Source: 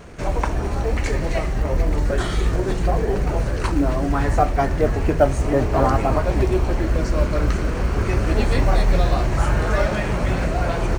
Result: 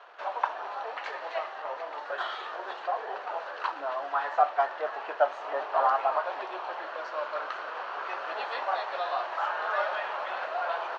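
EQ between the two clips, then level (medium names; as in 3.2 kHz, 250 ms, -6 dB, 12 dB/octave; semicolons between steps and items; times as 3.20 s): high-pass 750 Hz 24 dB/octave; low-pass 3.3 kHz 24 dB/octave; peaking EQ 2.2 kHz -12 dB 0.58 oct; 0.0 dB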